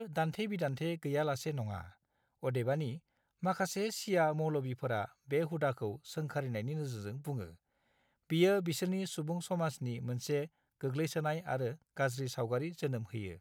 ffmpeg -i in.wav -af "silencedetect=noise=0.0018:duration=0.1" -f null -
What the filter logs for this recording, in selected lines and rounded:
silence_start: 1.93
silence_end: 2.43 | silence_duration: 0.50
silence_start: 2.99
silence_end: 3.42 | silence_duration: 0.43
silence_start: 5.12
silence_end: 5.28 | silence_duration: 0.16
silence_start: 7.55
silence_end: 8.30 | silence_duration: 0.75
silence_start: 10.47
silence_end: 10.81 | silence_duration: 0.34
silence_start: 11.76
silence_end: 11.97 | silence_duration: 0.20